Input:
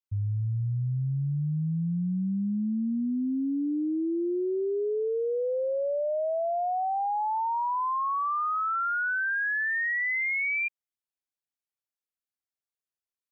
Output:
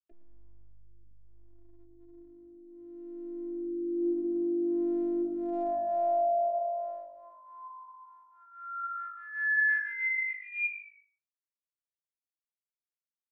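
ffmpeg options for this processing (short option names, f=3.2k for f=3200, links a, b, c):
-filter_complex "[0:a]bandreject=f=340.8:t=h:w=4,bandreject=f=681.6:t=h:w=4,bandreject=f=1.0224k:t=h:w=4,bandreject=f=1.3632k:t=h:w=4,bandreject=f=1.704k:t=h:w=4,bandreject=f=2.0448k:t=h:w=4,bandreject=f=2.3856k:t=h:w=4,bandreject=f=2.7264k:t=h:w=4,bandreject=f=3.0672k:t=h:w=4,bandreject=f=3.408k:t=h:w=4,bandreject=f=3.7488k:t=h:w=4,bandreject=f=4.0896k:t=h:w=4,bandreject=f=4.4304k:t=h:w=4,bandreject=f=4.7712k:t=h:w=4,bandreject=f=5.112k:t=h:w=4,bandreject=f=5.4528k:t=h:w=4,bandreject=f=5.7936k:t=h:w=4,bandreject=f=6.1344k:t=h:w=4,bandreject=f=6.4752k:t=h:w=4,bandreject=f=6.816k:t=h:w=4,bandreject=f=7.1568k:t=h:w=4,bandreject=f=7.4976k:t=h:w=4,bandreject=f=7.8384k:t=h:w=4,bandreject=f=8.1792k:t=h:w=4,bandreject=f=8.52k:t=h:w=4,bandreject=f=8.8608k:t=h:w=4,bandreject=f=9.2016k:t=h:w=4,bandreject=f=9.5424k:t=h:w=4,bandreject=f=9.8832k:t=h:w=4,afftfilt=real='re*gte(hypot(re,im),0.0178)':imag='im*gte(hypot(re,im),0.0178)':win_size=1024:overlap=0.75,equalizer=f=280:w=0.35:g=14.5,alimiter=limit=-21dB:level=0:latency=1:release=307,acompressor=mode=upward:threshold=-38dB:ratio=2.5,asplit=3[a][b][c];[a]bandpass=f=530:t=q:w=8,volume=0dB[d];[b]bandpass=f=1.84k:t=q:w=8,volume=-6dB[e];[c]bandpass=f=2.48k:t=q:w=8,volume=-9dB[f];[d][e][f]amix=inputs=3:normalize=0,acontrast=62,afftfilt=real='hypot(re,im)*cos(PI*b)':imag='0':win_size=512:overlap=0.75,flanger=delay=4.5:depth=5.3:regen=86:speed=0.16:shape=sinusoidal,asplit=2[g][h];[h]asplit=3[i][j][k];[i]adelay=111,afreqshift=-50,volume=-14.5dB[l];[j]adelay=222,afreqshift=-100,volume=-23.4dB[m];[k]adelay=333,afreqshift=-150,volume=-32.2dB[n];[l][m][n]amix=inputs=3:normalize=0[o];[g][o]amix=inputs=2:normalize=0,volume=8.5dB"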